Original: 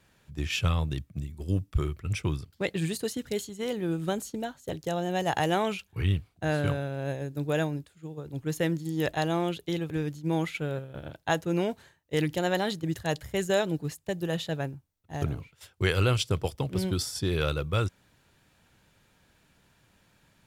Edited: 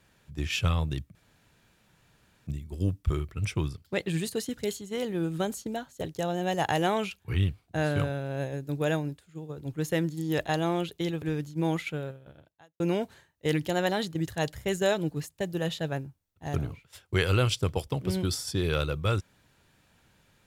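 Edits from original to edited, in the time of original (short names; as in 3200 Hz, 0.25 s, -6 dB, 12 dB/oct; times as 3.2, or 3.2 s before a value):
1.15 insert room tone 1.32 s
10.55–11.48 fade out quadratic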